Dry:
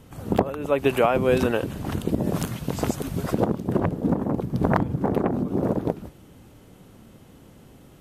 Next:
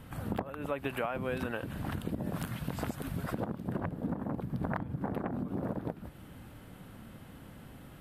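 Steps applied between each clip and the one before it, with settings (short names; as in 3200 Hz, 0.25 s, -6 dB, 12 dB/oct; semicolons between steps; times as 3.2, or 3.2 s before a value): fifteen-band EQ 400 Hz -6 dB, 1600 Hz +5 dB, 6300 Hz -9 dB; compressor 3:1, threshold -35 dBFS, peak gain reduction 15.5 dB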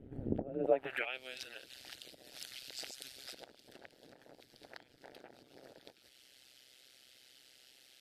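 fixed phaser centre 440 Hz, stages 4; band-pass sweep 200 Hz -> 4900 Hz, 0.42–1.22; AM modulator 130 Hz, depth 90%; gain +15.5 dB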